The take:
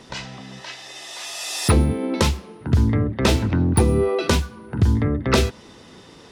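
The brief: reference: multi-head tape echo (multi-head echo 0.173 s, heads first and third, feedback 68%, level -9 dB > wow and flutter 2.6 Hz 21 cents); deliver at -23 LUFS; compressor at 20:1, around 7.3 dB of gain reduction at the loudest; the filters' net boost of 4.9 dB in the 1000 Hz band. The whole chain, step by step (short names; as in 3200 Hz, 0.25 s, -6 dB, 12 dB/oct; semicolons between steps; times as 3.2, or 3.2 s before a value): bell 1000 Hz +6 dB; compressor 20:1, threshold -18 dBFS; multi-head echo 0.173 s, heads first and third, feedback 68%, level -9 dB; wow and flutter 2.6 Hz 21 cents; gain +1 dB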